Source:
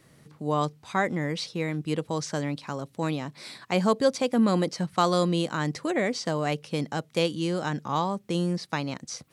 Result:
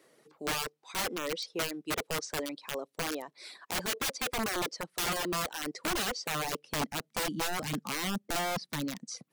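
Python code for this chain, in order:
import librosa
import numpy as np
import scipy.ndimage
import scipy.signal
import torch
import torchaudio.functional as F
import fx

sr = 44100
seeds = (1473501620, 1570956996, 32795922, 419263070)

y = fx.filter_sweep_highpass(x, sr, from_hz=410.0, to_hz=200.0, start_s=6.21, end_s=7.2, q=1.8)
y = (np.mod(10.0 ** (21.5 / 20.0) * y + 1.0, 2.0) - 1.0) / 10.0 ** (21.5 / 20.0)
y = fx.dereverb_blind(y, sr, rt60_s=0.76)
y = y * 10.0 ** (-4.0 / 20.0)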